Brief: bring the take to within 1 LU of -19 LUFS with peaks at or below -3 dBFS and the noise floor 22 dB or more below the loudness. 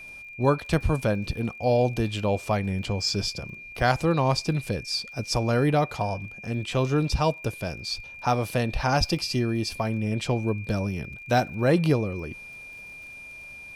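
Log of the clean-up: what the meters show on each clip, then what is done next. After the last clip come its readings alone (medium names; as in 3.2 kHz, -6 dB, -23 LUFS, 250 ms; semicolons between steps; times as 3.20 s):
tick rate 33 per s; steady tone 2.4 kHz; tone level -40 dBFS; loudness -26.0 LUFS; peak level -8.5 dBFS; loudness target -19.0 LUFS
-> de-click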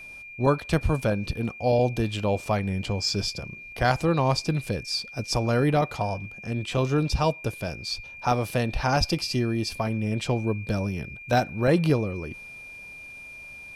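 tick rate 0.36 per s; steady tone 2.4 kHz; tone level -40 dBFS
-> band-stop 2.4 kHz, Q 30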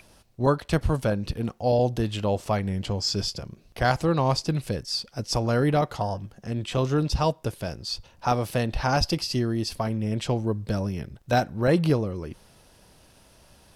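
steady tone not found; loudness -26.0 LUFS; peak level -8.5 dBFS; loudness target -19.0 LUFS
-> trim +7 dB; peak limiter -3 dBFS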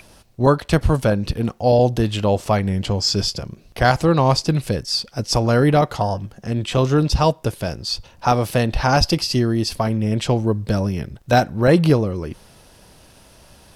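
loudness -19.5 LUFS; peak level -3.0 dBFS; noise floor -49 dBFS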